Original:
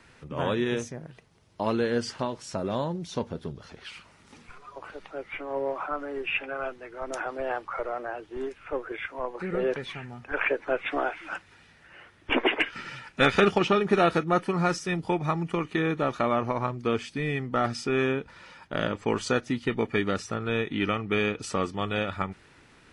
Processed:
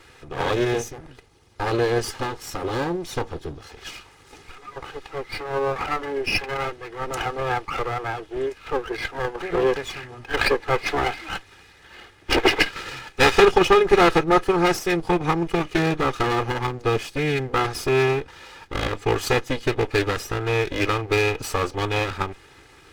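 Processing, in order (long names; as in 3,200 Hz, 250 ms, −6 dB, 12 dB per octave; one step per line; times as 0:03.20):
lower of the sound and its delayed copy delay 2.4 ms
level +7.5 dB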